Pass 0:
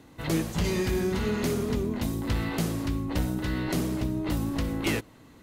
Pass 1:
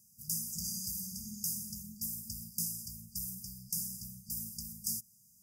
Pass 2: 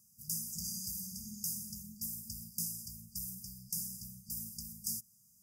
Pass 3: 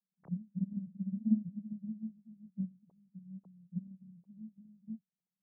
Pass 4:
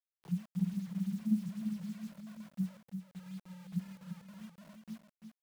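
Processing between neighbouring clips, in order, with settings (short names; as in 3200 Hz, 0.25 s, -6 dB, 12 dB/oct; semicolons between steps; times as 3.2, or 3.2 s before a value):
RIAA curve recording; FFT band-reject 230–4700 Hz; gain -7.5 dB
bell 1200 Hz +14 dB 0.49 oct; gain -2 dB
sine-wave speech; upward expander 2.5:1, over -54 dBFS; gain +10.5 dB
fixed phaser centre 380 Hz, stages 8; bit-crush 10-bit; echo 0.342 s -7 dB; gain +3.5 dB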